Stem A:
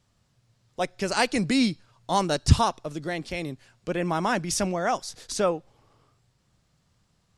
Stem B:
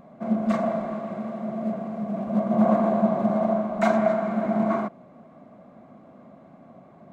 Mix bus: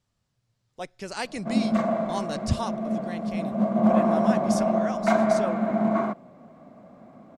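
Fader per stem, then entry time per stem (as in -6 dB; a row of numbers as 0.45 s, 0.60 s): -8.5 dB, 0.0 dB; 0.00 s, 1.25 s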